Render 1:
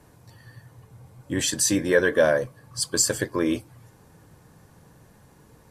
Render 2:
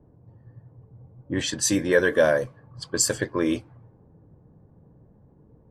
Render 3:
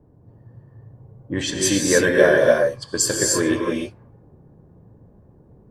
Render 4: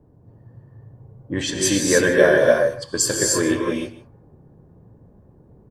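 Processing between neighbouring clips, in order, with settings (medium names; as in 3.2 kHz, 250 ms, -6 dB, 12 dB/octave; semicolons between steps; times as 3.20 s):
level-controlled noise filter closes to 470 Hz, open at -17.5 dBFS
gated-style reverb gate 330 ms rising, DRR -1.5 dB; trim +1.5 dB
delay 151 ms -17 dB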